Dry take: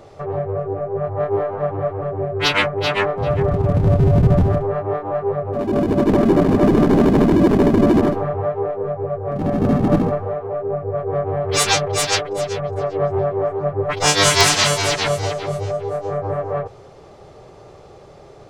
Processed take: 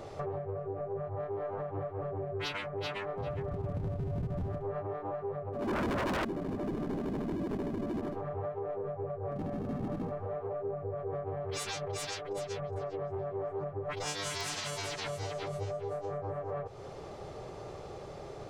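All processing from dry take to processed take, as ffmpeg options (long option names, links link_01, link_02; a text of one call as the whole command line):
ffmpeg -i in.wav -filter_complex "[0:a]asettb=1/sr,asplit=3[link_01][link_02][link_03];[link_01]atrim=end=5.624[link_04];[link_02]atrim=start=5.62:end=6.25,asetpts=PTS-STARTPTS,afade=type=in:duration=0.004:curve=qsin,afade=type=out:start_time=0.626:duration=0.004:curve=qsin,lowshelf=frequency=350:gain=-4.5,acontrast=53,aeval=exprs='0.596*sin(PI/2*3.16*val(0)/0.596)':channel_layout=same[link_05];[link_03]atrim=start=6.246[link_06];[link_04][link_05]acrossfade=duration=0.004:curve1=hsin:curve2=qsin[link_07];[link_07][link_06]acrossfade=duration=0.004:curve1=qsin:curve2=hsin,acompressor=threshold=-33dB:ratio=3,alimiter=level_in=3dB:limit=-24dB:level=0:latency=1:release=140,volume=-3dB,volume=-1.5dB" out.wav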